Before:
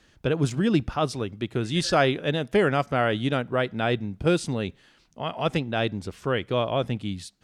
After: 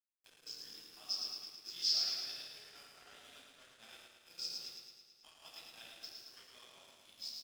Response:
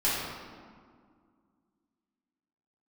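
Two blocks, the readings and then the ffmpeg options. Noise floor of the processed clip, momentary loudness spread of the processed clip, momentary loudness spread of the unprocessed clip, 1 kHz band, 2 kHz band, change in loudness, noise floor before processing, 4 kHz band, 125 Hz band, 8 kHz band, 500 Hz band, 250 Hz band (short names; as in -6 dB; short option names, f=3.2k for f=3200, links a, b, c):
-67 dBFS, 23 LU, 9 LU, -32.5 dB, -26.5 dB, -13.5 dB, -60 dBFS, -5.5 dB, under -40 dB, -7.5 dB, -39.5 dB, under -40 dB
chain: -filter_complex "[0:a]acompressor=threshold=-24dB:ratio=6,bandpass=f=5.2k:t=q:w=12:csg=0[a];[1:a]atrim=start_sample=2205[b];[a][b]afir=irnorm=-1:irlink=0,aeval=exprs='sgn(val(0))*max(abs(val(0))-0.00211,0)':c=same,aecho=1:1:109|218|327|436|545|654|763|872:0.562|0.337|0.202|0.121|0.0729|0.0437|0.0262|0.0157,acompressor=mode=upward:threshold=-58dB:ratio=2.5"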